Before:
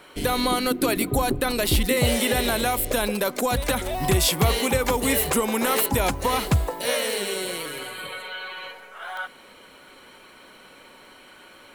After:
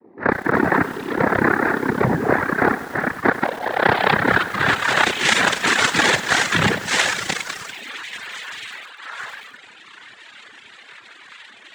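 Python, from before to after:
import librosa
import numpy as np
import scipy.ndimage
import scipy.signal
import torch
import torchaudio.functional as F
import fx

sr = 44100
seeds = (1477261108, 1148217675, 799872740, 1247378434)

y = fx.filter_sweep_lowpass(x, sr, from_hz=340.0, to_hz=3400.0, start_s=3.11, end_s=5.43, q=6.3)
y = fx.echo_feedback(y, sr, ms=148, feedback_pct=53, wet_db=-15.0)
y = fx.rev_spring(y, sr, rt60_s=1.3, pass_ms=(30,), chirp_ms=35, drr_db=-7.5)
y = fx.cheby_harmonics(y, sr, harmonics=(7,), levels_db=(-15,), full_scale_db=3.0)
y = fx.noise_vocoder(y, sr, seeds[0], bands=6)
y = fx.peak_eq(y, sr, hz=1600.0, db=10.0, octaves=0.99)
y = fx.over_compress(y, sr, threshold_db=-15.0, ratio=-1.0)
y = fx.dereverb_blind(y, sr, rt60_s=1.2)
y = fx.echo_crushed(y, sr, ms=96, feedback_pct=80, bits=5, wet_db=-14.5)
y = y * librosa.db_to_amplitude(-2.0)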